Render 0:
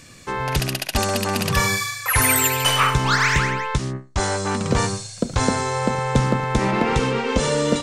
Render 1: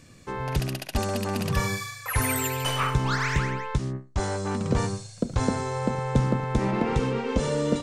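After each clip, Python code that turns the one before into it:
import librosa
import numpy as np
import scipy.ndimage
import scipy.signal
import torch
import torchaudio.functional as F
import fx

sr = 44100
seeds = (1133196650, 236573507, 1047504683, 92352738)

y = fx.tilt_shelf(x, sr, db=4.0, hz=780.0)
y = F.gain(torch.from_numpy(y), -7.0).numpy()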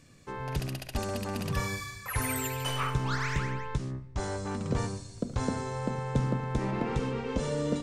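y = fx.room_shoebox(x, sr, seeds[0], volume_m3=1100.0, walls='mixed', distance_m=0.31)
y = F.gain(torch.from_numpy(y), -6.0).numpy()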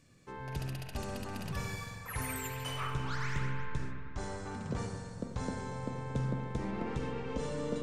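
y = fx.echo_bbd(x, sr, ms=236, stages=4096, feedback_pct=71, wet_db=-13.5)
y = fx.rev_spring(y, sr, rt60_s=1.9, pass_ms=(45,), chirp_ms=55, drr_db=4.5)
y = F.gain(torch.from_numpy(y), -7.0).numpy()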